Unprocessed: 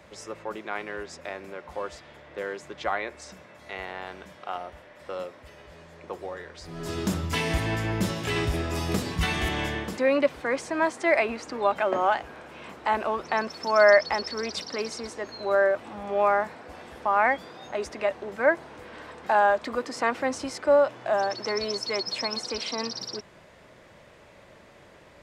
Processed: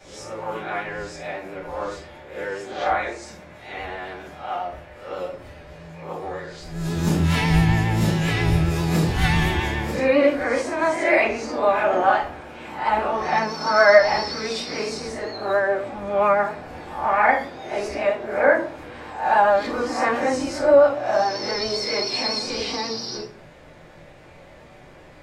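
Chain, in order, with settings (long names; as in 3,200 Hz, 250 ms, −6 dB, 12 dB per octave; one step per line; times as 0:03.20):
peak hold with a rise ahead of every peak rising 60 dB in 0.52 s
rectangular room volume 310 cubic metres, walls furnished, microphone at 7.6 metres
pitch vibrato 7.4 Hz 37 cents
level −9 dB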